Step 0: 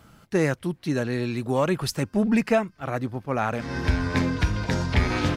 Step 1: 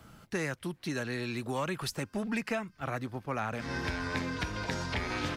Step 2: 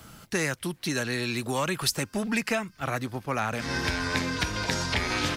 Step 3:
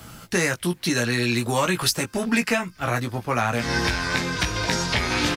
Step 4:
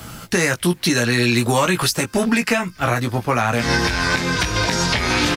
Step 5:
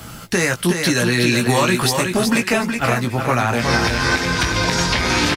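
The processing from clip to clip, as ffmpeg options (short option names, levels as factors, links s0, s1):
-filter_complex "[0:a]acrossover=split=290|980[s0][s1][s2];[s0]acompressor=threshold=0.0141:ratio=4[s3];[s1]acompressor=threshold=0.0126:ratio=4[s4];[s2]acompressor=threshold=0.0224:ratio=4[s5];[s3][s4][s5]amix=inputs=3:normalize=0,volume=0.841"
-af "highshelf=f=3200:g=9,volume=1.68"
-filter_complex "[0:a]asplit=2[s0][s1];[s1]alimiter=limit=0.141:level=0:latency=1:release=412,volume=0.75[s2];[s0][s2]amix=inputs=2:normalize=0,asplit=2[s3][s4];[s4]adelay=17,volume=0.562[s5];[s3][s5]amix=inputs=2:normalize=0"
-af "alimiter=limit=0.188:level=0:latency=1:release=142,volume=2.24"
-af "aecho=1:1:369|738|1107:0.531|0.133|0.0332"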